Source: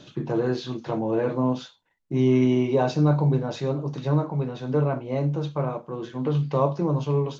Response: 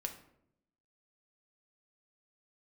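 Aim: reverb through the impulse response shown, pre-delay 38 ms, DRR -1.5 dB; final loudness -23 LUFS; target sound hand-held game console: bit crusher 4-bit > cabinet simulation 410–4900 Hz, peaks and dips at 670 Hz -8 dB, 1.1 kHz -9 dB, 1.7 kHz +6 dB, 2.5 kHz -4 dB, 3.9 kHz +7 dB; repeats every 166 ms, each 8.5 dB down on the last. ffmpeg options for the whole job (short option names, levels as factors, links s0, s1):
-filter_complex "[0:a]aecho=1:1:166|332|498|664:0.376|0.143|0.0543|0.0206,asplit=2[s0][s1];[1:a]atrim=start_sample=2205,adelay=38[s2];[s1][s2]afir=irnorm=-1:irlink=0,volume=1.33[s3];[s0][s3]amix=inputs=2:normalize=0,acrusher=bits=3:mix=0:aa=0.000001,highpass=410,equalizer=f=670:t=q:w=4:g=-8,equalizer=f=1100:t=q:w=4:g=-9,equalizer=f=1700:t=q:w=4:g=6,equalizer=f=2500:t=q:w=4:g=-4,equalizer=f=3900:t=q:w=4:g=7,lowpass=f=4900:w=0.5412,lowpass=f=4900:w=1.3066,volume=1.19"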